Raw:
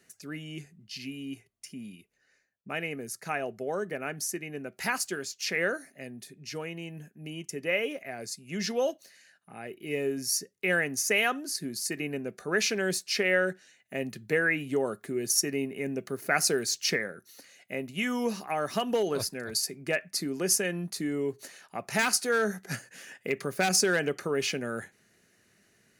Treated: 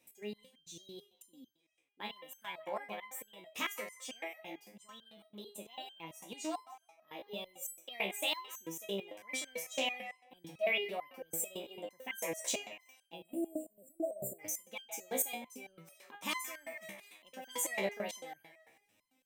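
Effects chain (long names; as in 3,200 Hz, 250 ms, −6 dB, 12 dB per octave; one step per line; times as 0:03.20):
wrong playback speed 33 rpm record played at 45 rpm
time-frequency box erased 0:13.15–0:14.39, 730–7,100 Hz
delay with a band-pass on its return 158 ms, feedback 34%, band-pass 1,300 Hz, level −9 dB
step-sequenced resonator 9 Hz 66–1,600 Hz
level +2 dB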